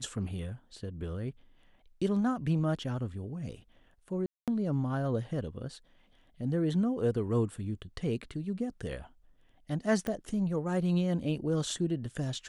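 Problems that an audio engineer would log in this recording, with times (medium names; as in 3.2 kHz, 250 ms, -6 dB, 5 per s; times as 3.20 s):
4.26–4.48 s: dropout 217 ms
10.07 s: pop -21 dBFS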